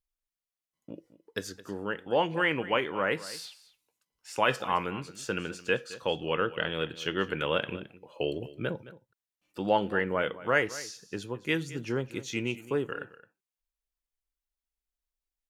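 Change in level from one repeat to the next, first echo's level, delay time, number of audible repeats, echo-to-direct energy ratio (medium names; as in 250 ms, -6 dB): no regular repeats, -17.0 dB, 217 ms, 1, -17.0 dB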